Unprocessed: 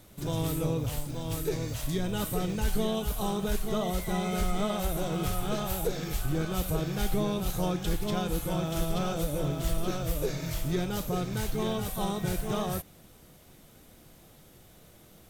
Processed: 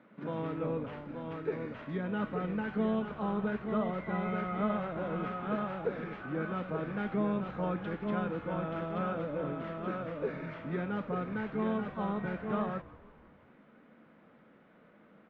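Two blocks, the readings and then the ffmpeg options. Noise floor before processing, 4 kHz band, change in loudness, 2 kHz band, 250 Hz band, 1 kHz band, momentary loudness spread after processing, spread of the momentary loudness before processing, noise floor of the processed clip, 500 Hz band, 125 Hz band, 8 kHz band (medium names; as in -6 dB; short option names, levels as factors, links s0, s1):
-55 dBFS, -16.5 dB, -4.0 dB, -0.5 dB, -2.0 dB, -1.5 dB, 5 LU, 3 LU, -61 dBFS, -2.5 dB, -7.5 dB, under -40 dB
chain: -filter_complex "[0:a]highpass=f=200:w=0.5412,highpass=f=200:w=1.3066,equalizer=f=220:t=q:w=4:g=4,equalizer=f=360:t=q:w=4:g=-7,equalizer=f=740:t=q:w=4:g=-6,equalizer=f=1400:t=q:w=4:g=3,lowpass=f=2100:w=0.5412,lowpass=f=2100:w=1.3066,asplit=6[s0][s1][s2][s3][s4][s5];[s1]adelay=165,afreqshift=-69,volume=0.1[s6];[s2]adelay=330,afreqshift=-138,volume=0.0589[s7];[s3]adelay=495,afreqshift=-207,volume=0.0347[s8];[s4]adelay=660,afreqshift=-276,volume=0.0207[s9];[s5]adelay=825,afreqshift=-345,volume=0.0122[s10];[s0][s6][s7][s8][s9][s10]amix=inputs=6:normalize=0"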